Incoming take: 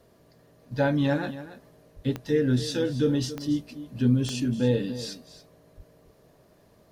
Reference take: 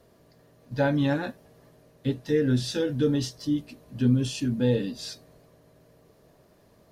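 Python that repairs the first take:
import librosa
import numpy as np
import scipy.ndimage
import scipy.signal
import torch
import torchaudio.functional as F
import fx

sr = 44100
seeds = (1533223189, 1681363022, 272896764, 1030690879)

y = fx.fix_declick_ar(x, sr, threshold=10.0)
y = fx.fix_deplosive(y, sr, at_s=(1.95, 5.76))
y = fx.fix_echo_inverse(y, sr, delay_ms=280, level_db=-14.0)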